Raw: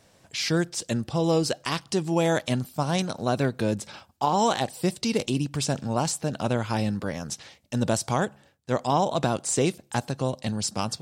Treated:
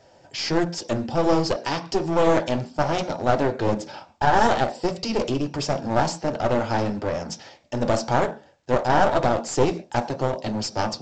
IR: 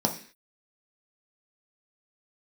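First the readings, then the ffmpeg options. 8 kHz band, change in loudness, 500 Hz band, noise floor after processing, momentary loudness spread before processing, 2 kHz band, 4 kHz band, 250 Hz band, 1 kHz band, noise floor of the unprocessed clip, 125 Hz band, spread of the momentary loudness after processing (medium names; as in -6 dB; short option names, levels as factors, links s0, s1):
-5.0 dB, +3.0 dB, +5.0 dB, -54 dBFS, 8 LU, +4.5 dB, +0.5 dB, +1.0 dB, +5.5 dB, -60 dBFS, -0.5 dB, 9 LU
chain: -filter_complex "[0:a]asplit=2[s0][s1];[s1]highpass=320,lowpass=3400[s2];[1:a]atrim=start_sample=2205,atrim=end_sample=6615[s3];[s2][s3]afir=irnorm=-1:irlink=0,volume=0.398[s4];[s0][s4]amix=inputs=2:normalize=0,flanger=delay=1.6:depth=5.9:regen=-63:speed=1.4:shape=sinusoidal,aeval=exprs='clip(val(0),-1,0.0316)':c=same,volume=1.58" -ar 16000 -c:a pcm_alaw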